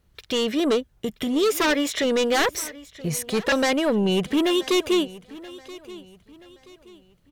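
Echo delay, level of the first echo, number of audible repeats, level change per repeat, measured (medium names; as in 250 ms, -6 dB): 978 ms, -19.0 dB, 2, -9.0 dB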